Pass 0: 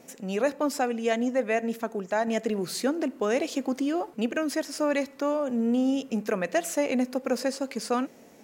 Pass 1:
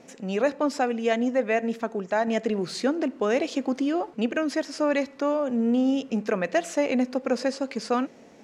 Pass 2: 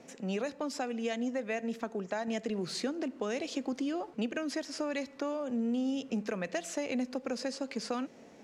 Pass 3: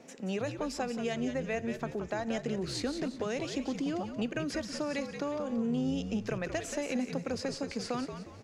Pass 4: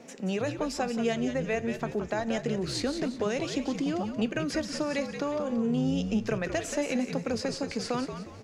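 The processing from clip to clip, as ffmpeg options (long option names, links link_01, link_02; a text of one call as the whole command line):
ffmpeg -i in.wav -af "lowpass=5700,volume=2dB" out.wav
ffmpeg -i in.wav -filter_complex "[0:a]acrossover=split=170|3000[link_01][link_02][link_03];[link_02]acompressor=threshold=-29dB:ratio=6[link_04];[link_01][link_04][link_03]amix=inputs=3:normalize=0,volume=-3.5dB" out.wav
ffmpeg -i in.wav -filter_complex "[0:a]asplit=5[link_01][link_02][link_03][link_04][link_05];[link_02]adelay=179,afreqshift=-78,volume=-8dB[link_06];[link_03]adelay=358,afreqshift=-156,volume=-16.6dB[link_07];[link_04]adelay=537,afreqshift=-234,volume=-25.3dB[link_08];[link_05]adelay=716,afreqshift=-312,volume=-33.9dB[link_09];[link_01][link_06][link_07][link_08][link_09]amix=inputs=5:normalize=0" out.wav
ffmpeg -i in.wav -af "flanger=delay=4.1:depth=2.9:regen=84:speed=0.96:shape=triangular,volume=8.5dB" out.wav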